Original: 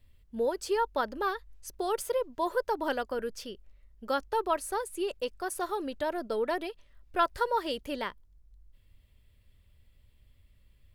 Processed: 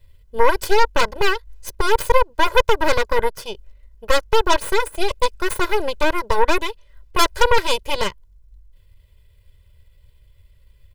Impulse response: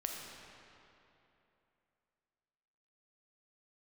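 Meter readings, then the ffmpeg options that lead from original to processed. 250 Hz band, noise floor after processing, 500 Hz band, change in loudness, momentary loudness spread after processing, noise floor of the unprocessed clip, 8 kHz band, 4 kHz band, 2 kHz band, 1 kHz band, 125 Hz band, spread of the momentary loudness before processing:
+7.5 dB, -54 dBFS, +10.5 dB, +12.0 dB, 9 LU, -63 dBFS, +12.0 dB, +17.0 dB, +16.0 dB, +11.5 dB, n/a, 9 LU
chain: -af "acontrast=32,aeval=exprs='0.335*(cos(1*acos(clip(val(0)/0.335,-1,1)))-cos(1*PI/2))+0.133*(cos(8*acos(clip(val(0)/0.335,-1,1)))-cos(8*PI/2))':c=same,aecho=1:1:2:0.8"

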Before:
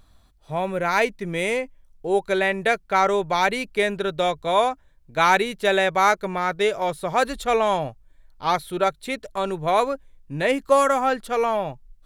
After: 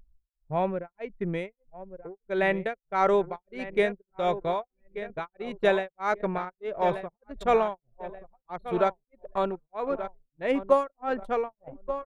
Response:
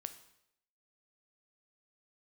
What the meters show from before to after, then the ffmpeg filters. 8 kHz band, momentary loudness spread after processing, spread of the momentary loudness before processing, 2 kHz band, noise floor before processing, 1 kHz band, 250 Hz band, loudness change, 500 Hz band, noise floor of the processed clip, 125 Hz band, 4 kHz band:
under -20 dB, 17 LU, 10 LU, -10.5 dB, -56 dBFS, -8.5 dB, -4.5 dB, -6.5 dB, -5.0 dB, under -85 dBFS, -5.0 dB, -14.0 dB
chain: -filter_complex "[0:a]asplit=2[a][b];[b]aecho=0:1:1180|2360|3540|4720:0.224|0.0985|0.0433|0.0191[c];[a][c]amix=inputs=2:normalize=0,tremolo=f=1.6:d=1,anlmdn=6.31,lowpass=f=1.5k:p=1"

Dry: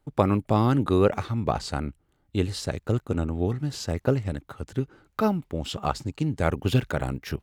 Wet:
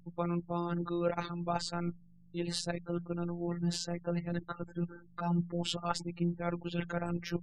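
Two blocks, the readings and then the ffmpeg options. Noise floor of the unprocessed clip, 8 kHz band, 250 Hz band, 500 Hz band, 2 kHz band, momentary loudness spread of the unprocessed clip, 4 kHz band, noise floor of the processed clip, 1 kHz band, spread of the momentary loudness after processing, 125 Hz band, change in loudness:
-69 dBFS, -3.5 dB, -8.0 dB, -10.5 dB, -8.0 dB, 10 LU, -3.5 dB, -58 dBFS, -9.0 dB, 6 LU, -10.5 dB, -9.0 dB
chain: -af "areverse,acompressor=threshold=-32dB:ratio=16,areverse,afftfilt=real='re*gte(hypot(re,im),0.00316)':imag='im*gte(hypot(re,im),0.00316)':win_size=1024:overlap=0.75,aeval=exprs='val(0)+0.00112*(sin(2*PI*50*n/s)+sin(2*PI*2*50*n/s)/2+sin(2*PI*3*50*n/s)/3+sin(2*PI*4*50*n/s)/4+sin(2*PI*5*50*n/s)/5)':c=same,bandreject=f=60:t=h:w=6,bandreject=f=120:t=h:w=6,bandreject=f=180:t=h:w=6,afftfilt=real='hypot(re,im)*cos(PI*b)':imag='0':win_size=1024:overlap=0.75,volume=7dB"

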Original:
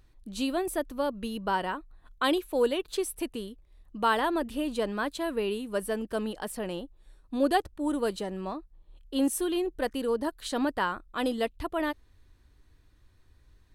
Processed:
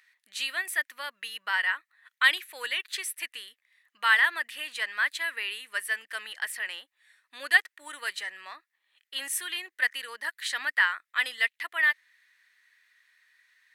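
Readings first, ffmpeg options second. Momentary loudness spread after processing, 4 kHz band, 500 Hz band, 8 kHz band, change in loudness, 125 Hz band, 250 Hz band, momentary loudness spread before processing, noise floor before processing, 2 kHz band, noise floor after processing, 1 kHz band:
14 LU, +6.0 dB, -19.5 dB, +3.0 dB, +2.5 dB, under -35 dB, under -25 dB, 10 LU, -62 dBFS, +12.5 dB, -85 dBFS, -5.0 dB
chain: -af "highpass=f=1.9k:t=q:w=6,volume=2.5dB"

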